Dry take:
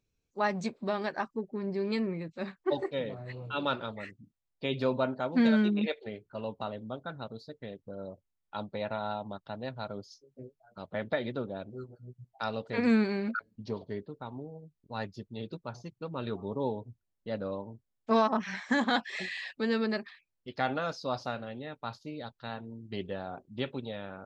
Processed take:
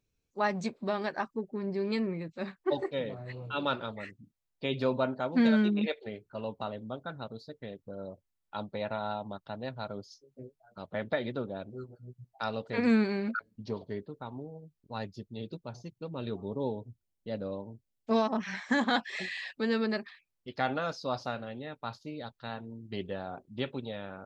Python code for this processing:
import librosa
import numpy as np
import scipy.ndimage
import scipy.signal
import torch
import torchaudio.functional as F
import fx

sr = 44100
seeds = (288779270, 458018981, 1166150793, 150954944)

y = fx.peak_eq(x, sr, hz=1300.0, db=-7.0, octaves=1.3, at=(14.98, 18.39))